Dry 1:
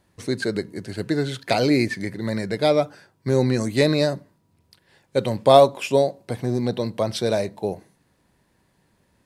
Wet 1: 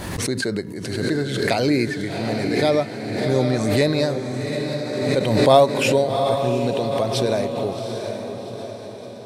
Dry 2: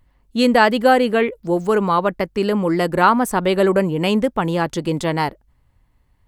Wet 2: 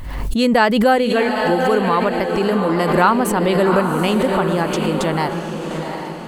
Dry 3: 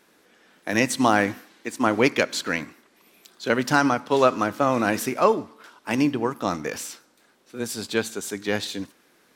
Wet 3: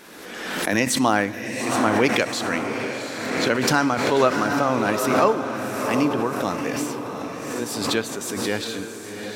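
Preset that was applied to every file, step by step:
on a send: echo that smears into a reverb 758 ms, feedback 50%, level -6 dB; on the sum: swell ahead of each attack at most 36 dB/s; trim -1 dB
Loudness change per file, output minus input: +1.0 LU, +1.0 LU, +1.0 LU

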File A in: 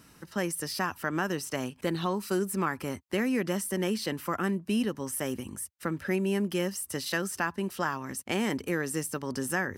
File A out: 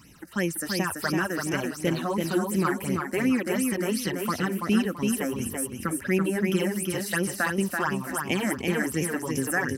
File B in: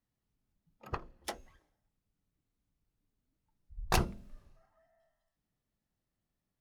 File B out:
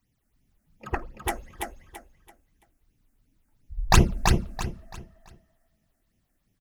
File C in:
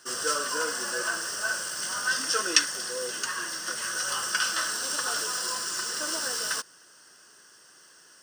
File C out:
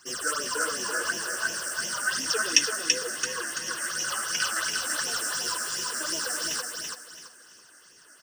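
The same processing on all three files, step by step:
phase shifter stages 8, 2.8 Hz, lowest notch 120–1400 Hz; feedback delay 334 ms, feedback 30%, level -4 dB; normalise loudness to -27 LUFS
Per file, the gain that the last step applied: +5.5 dB, +13.0 dB, +2.0 dB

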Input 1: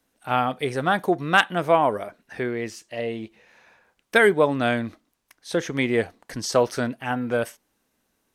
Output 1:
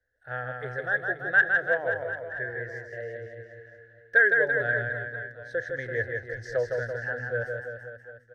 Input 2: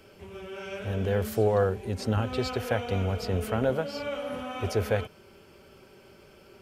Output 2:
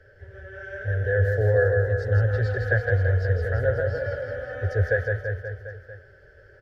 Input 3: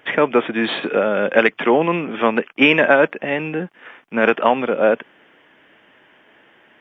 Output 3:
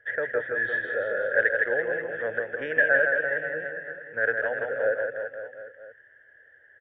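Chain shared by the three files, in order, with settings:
FFT filter 110 Hz 0 dB, 200 Hz -27 dB, 360 Hz -17 dB, 510 Hz -2 dB, 1.1 kHz -28 dB, 1.7 kHz +9 dB, 2.4 kHz -27 dB, 3.6 kHz -19 dB, 5.8 kHz -20 dB, 8.8 kHz -29 dB; on a send: reverse bouncing-ball echo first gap 160 ms, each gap 1.1×, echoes 5; on the sum: peak normalisation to -9 dBFS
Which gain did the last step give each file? -2.0 dB, +6.5 dB, -6.0 dB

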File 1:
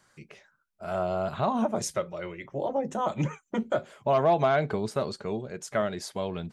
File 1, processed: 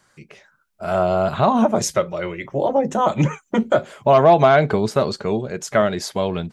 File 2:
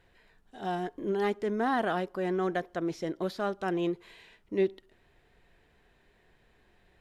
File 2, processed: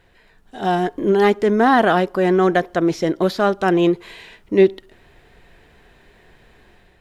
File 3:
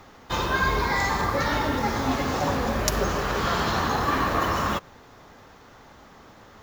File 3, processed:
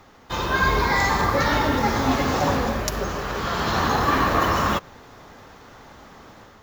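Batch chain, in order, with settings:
level rider gain up to 6 dB; dynamic bell 9.1 kHz, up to -7 dB, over -59 dBFS, Q 4.8; peak normalisation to -3 dBFS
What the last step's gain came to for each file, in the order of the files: +4.5 dB, +8.0 dB, -2.0 dB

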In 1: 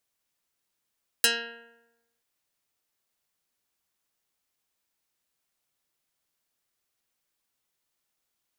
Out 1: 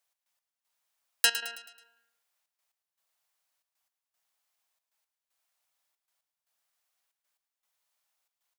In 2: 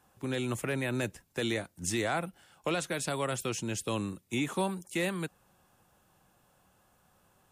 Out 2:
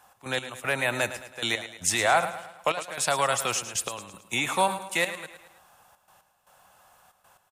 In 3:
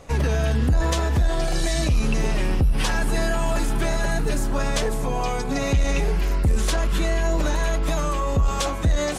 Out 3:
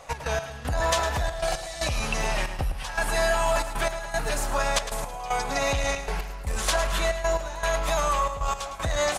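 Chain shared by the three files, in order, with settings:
resonant low shelf 490 Hz -11 dB, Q 1.5; trance gate "x.x..xxxx" 116 bpm -12 dB; on a send: feedback delay 108 ms, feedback 47%, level -12 dB; on the sum: normalise loudness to -27 LUFS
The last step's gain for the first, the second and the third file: 0.0 dB, +9.0 dB, +1.5 dB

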